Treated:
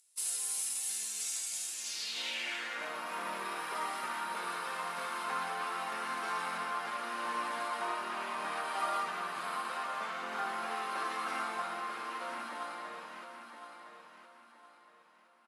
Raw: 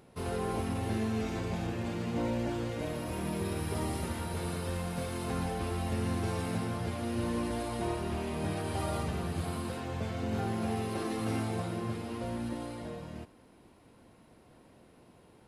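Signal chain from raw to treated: resonant low shelf 140 Hz -8.5 dB, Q 3; gate -43 dBFS, range -11 dB; tilt +4.5 dB/oct; feedback echo 1.014 s, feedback 34%, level -8.5 dB; band-pass sweep 7800 Hz -> 1200 Hz, 1.71–2.91; gain +8.5 dB

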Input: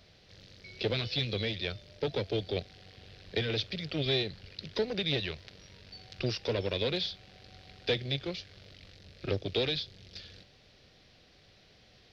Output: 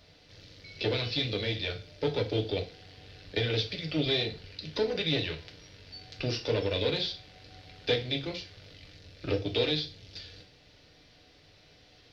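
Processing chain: FDN reverb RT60 0.37 s, low-frequency decay 0.95×, high-frequency decay 0.95×, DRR 2 dB

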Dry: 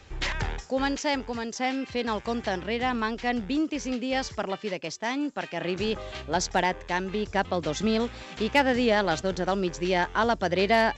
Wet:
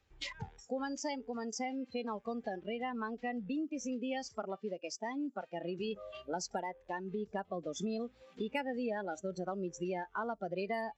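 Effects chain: compressor 4:1, threshold -31 dBFS, peak gain reduction 13 dB; spectral noise reduction 20 dB; gain -3.5 dB

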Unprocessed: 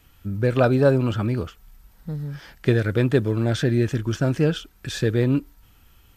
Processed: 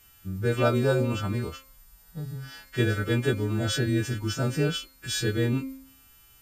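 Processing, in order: frequency quantiser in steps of 2 st; speed mistake 25 fps video run at 24 fps; de-hum 266.3 Hz, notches 27; gain -4.5 dB

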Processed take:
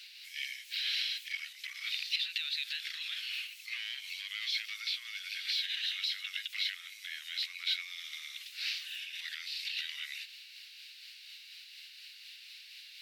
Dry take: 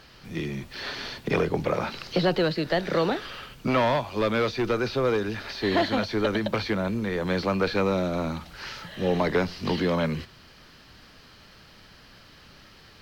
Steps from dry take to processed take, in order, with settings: delay-line pitch shifter -1.5 st; limiter -22.5 dBFS, peak gain reduction 11 dB; steep high-pass 2200 Hz 36 dB/oct; gain +6 dB

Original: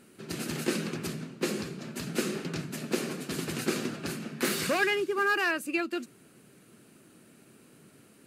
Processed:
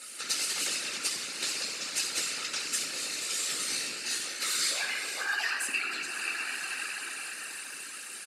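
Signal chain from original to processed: 2.91–5.21 resonator 60 Hz, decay 0.5 s, harmonics all, mix 100%; notch 3300 Hz, Q 15; comb 3.8 ms, depth 79%; diffused feedback echo 0.537 s, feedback 54%, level -15 dB; compressor 6:1, threshold -40 dBFS, peak gain reduction 17.5 dB; tilt +1.5 dB/oct; reverb RT60 1.7 s, pre-delay 11 ms, DRR -1.5 dB; whisperiser; weighting filter ITU-R 468

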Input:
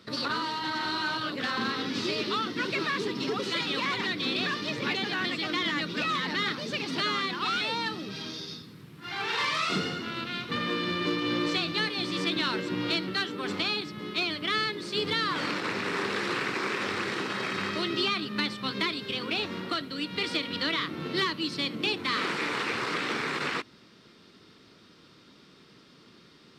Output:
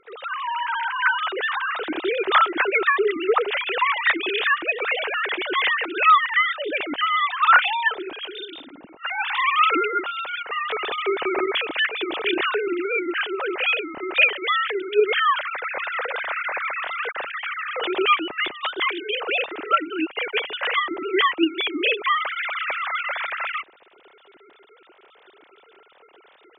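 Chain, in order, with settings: sine-wave speech; AGC gain up to 7.5 dB

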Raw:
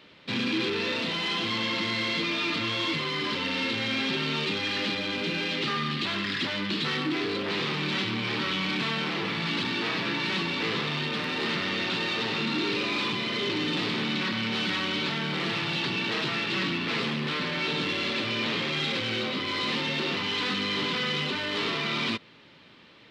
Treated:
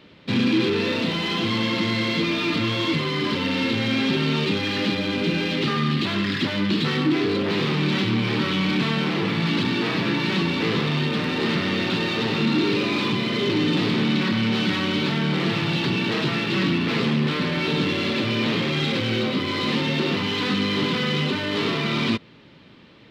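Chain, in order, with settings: low shelf 460 Hz +10 dB; in parallel at -10 dB: crossover distortion -38 dBFS

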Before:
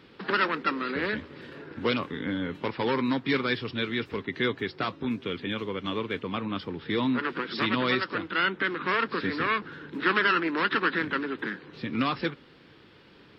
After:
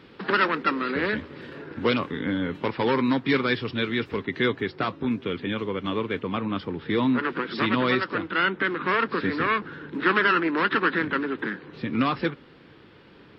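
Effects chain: high shelf 3800 Hz -5 dB, from 4.56 s -10 dB; gain +4 dB

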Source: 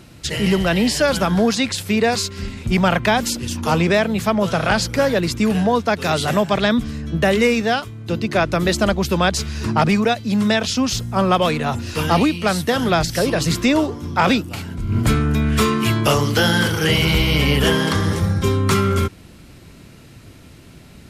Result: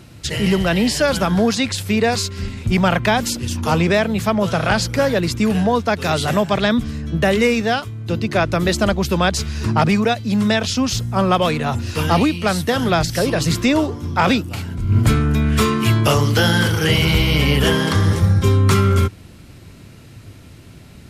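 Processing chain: bell 100 Hz +6 dB 0.62 oct

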